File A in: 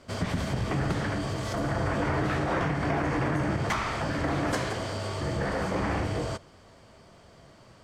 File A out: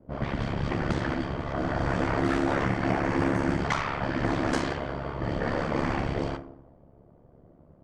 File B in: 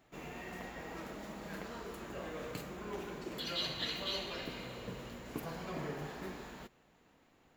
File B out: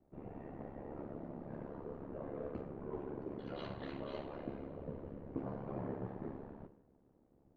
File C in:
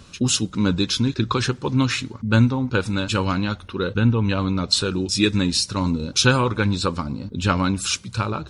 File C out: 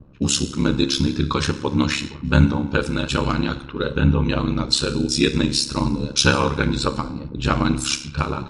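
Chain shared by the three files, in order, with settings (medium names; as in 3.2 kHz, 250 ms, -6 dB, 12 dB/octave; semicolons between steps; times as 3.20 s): FDN reverb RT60 0.88 s, low-frequency decay 1.05×, high-frequency decay 0.95×, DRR 8.5 dB; ring modulator 35 Hz; level-controlled noise filter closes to 470 Hz, open at -23 dBFS; trim +3 dB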